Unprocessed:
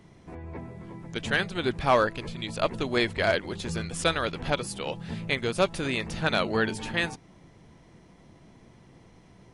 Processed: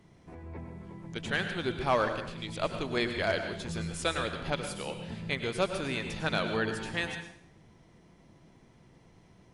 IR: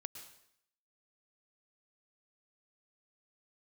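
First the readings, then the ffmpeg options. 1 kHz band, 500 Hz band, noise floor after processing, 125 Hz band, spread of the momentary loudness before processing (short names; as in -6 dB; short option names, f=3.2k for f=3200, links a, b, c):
-4.5 dB, -4.5 dB, -60 dBFS, -3.5 dB, 16 LU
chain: -filter_complex "[1:a]atrim=start_sample=2205,asetrate=48510,aresample=44100[a];[0:a][a]afir=irnorm=-1:irlink=0"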